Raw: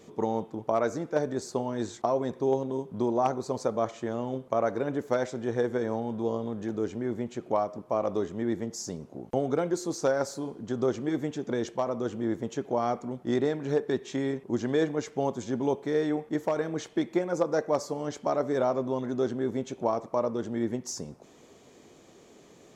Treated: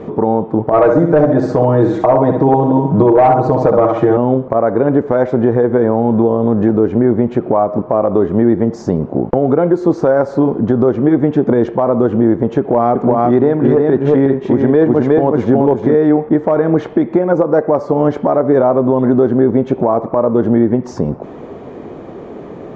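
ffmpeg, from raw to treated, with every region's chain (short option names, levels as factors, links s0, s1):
-filter_complex "[0:a]asettb=1/sr,asplit=3[s0][s1][s2];[s0]atrim=end=0.714[s3];[s1]atrim=start=0.71:end=4.17,asetpts=PTS-STARTPTS,afade=t=in:d=0.004:c=qsin,afade=t=out:st=3.456:d=0.004:c=qsin,aecho=1:1:6.4:0.96,atrim=end_sample=152586,aecho=1:1:65|130|195|260|325:0.473|0.185|0.072|0.0281|0.0109,atrim=end_sample=152586,asoftclip=type=hard:threshold=0.106[s4];[s2]atrim=start=4.166[s5];[s3][s4]acrossfade=d=0.004:c1=hsin:c2=qsin[s6];[s6][s5]acrossfade=d=0.004:c1=qsin:c2=hsin,asettb=1/sr,asplit=3[s7][s8][s9];[s7]atrim=end=12.594[s10];[s8]atrim=start=12.59:end=15.95,asetpts=PTS-STARTPTS,afade=t=in:d=0.004:c=qsin,afade=t=out:st=3.356:d=0.004:c=qsin,asoftclip=type=hard:threshold=0.133,aecho=1:1:364:0.668,atrim=end_sample=148176[s11];[s9]atrim=start=15.946[s12];[s10][s11]acrossfade=d=0.004:c1=hsin:c2=qsin[s13];[s13][s12]acrossfade=d=0.004:c1=qsin:c2=hsin,lowpass=1200,acompressor=threshold=0.0251:ratio=6,alimiter=level_in=20:limit=0.891:release=50:level=0:latency=1,volume=0.891"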